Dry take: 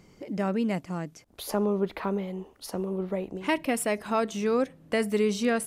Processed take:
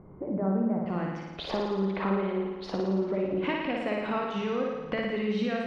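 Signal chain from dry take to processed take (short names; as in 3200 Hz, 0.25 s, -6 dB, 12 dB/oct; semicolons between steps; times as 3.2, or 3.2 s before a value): LPF 1200 Hz 24 dB/oct, from 0.86 s 3700 Hz; compressor, threshold -34 dBFS, peak gain reduction 13 dB; flutter echo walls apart 9.7 m, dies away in 1.2 s; reverb RT60 1.3 s, pre-delay 3 ms, DRR 9 dB; gain +5 dB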